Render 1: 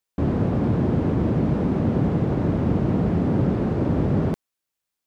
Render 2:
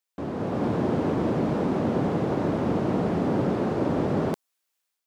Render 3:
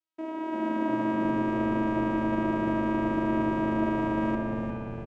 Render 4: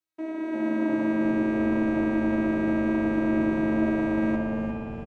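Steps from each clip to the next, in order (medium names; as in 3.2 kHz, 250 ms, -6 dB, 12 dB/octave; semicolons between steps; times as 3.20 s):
high-pass 600 Hz 6 dB/octave; dynamic bell 2.1 kHz, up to -4 dB, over -52 dBFS, Q 0.81; level rider gain up to 7 dB; trim -1.5 dB
vocoder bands 4, saw 320 Hz; frequency-shifting echo 351 ms, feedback 58%, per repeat -98 Hz, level -7 dB; spring tank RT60 2.4 s, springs 58 ms, chirp 70 ms, DRR -0.5 dB; trim -2 dB
doubling 13 ms -3 dB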